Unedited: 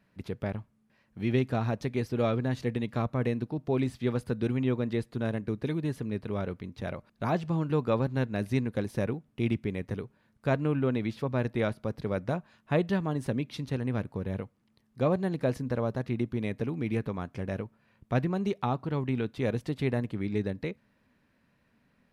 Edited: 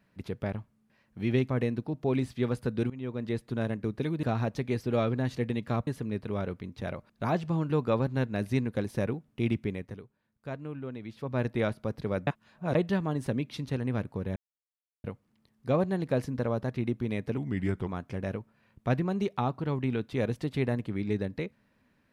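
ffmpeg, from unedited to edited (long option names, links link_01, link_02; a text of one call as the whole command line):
ffmpeg -i in.wav -filter_complex "[0:a]asplit=12[link_01][link_02][link_03][link_04][link_05][link_06][link_07][link_08][link_09][link_10][link_11][link_12];[link_01]atrim=end=1.492[link_13];[link_02]atrim=start=3.128:end=4.54,asetpts=PTS-STARTPTS,afade=type=out:start_time=1.408:duration=0.004:curve=hsin:silence=0.125893[link_14];[link_03]atrim=start=4.54:end=5.872,asetpts=PTS-STARTPTS,afade=type=in:duration=0.52:silence=0.125893[link_15];[link_04]atrim=start=1.488:end=3.132[link_16];[link_05]atrim=start=5.868:end=10.12,asetpts=PTS-STARTPTS,afade=type=out:start_time=3.822:duration=0.43:curve=qua:silence=0.281838[link_17];[link_06]atrim=start=10.12:end=10.97,asetpts=PTS-STARTPTS,volume=-11dB[link_18];[link_07]atrim=start=10.97:end=12.272,asetpts=PTS-STARTPTS,afade=type=in:duration=0.43:curve=qua:silence=0.281838[link_19];[link_08]atrim=start=12.268:end=12.752,asetpts=PTS-STARTPTS,areverse[link_20];[link_09]atrim=start=12.748:end=14.36,asetpts=PTS-STARTPTS,afade=type=out:start_time=1.608:duration=0.004:curve=hsin,apad=pad_dur=0.68[link_21];[link_10]atrim=start=14.36:end=16.694,asetpts=PTS-STARTPTS,afade=type=in:duration=0.004:curve=hsin[link_22];[link_11]atrim=start=16.69:end=17.12,asetpts=PTS-STARTPTS,asetrate=37926,aresample=44100[link_23];[link_12]atrim=start=17.116[link_24];[link_14][link_15]concat=n=2:v=0:a=1[link_25];[link_13][link_25]acrossfade=duration=0.004:curve1=hsin:curve2=hsin[link_26];[link_26][link_16]acrossfade=duration=0.004:curve1=hsin:curve2=hsin[link_27];[link_17][link_18][link_19]concat=n=3:v=0:a=1[link_28];[link_27][link_28]acrossfade=duration=0.004:curve1=hsin:curve2=hsin[link_29];[link_29][link_20]acrossfade=duration=0.004:curve1=hsin:curve2=hsin[link_30];[link_21][link_22]concat=n=2:v=0:a=1[link_31];[link_30][link_31]acrossfade=duration=0.004:curve1=hsin:curve2=hsin[link_32];[link_32][link_23]acrossfade=duration=0.004:curve1=hsin:curve2=hsin[link_33];[link_33][link_24]acrossfade=duration=0.004:curve1=hsin:curve2=hsin" out.wav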